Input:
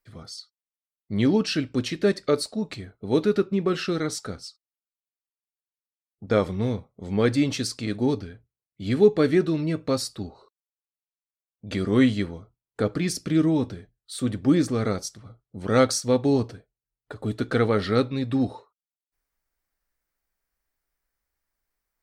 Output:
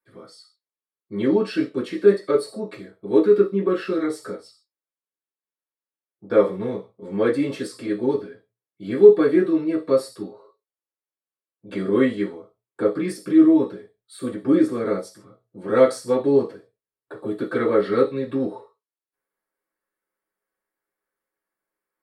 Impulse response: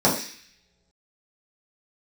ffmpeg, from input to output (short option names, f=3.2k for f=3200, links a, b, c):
-filter_complex "[1:a]atrim=start_sample=2205,afade=t=out:st=0.38:d=0.01,atrim=end_sample=17199,asetrate=88200,aresample=44100[a];[0:a][a]afir=irnorm=-1:irlink=0,volume=-15.5dB"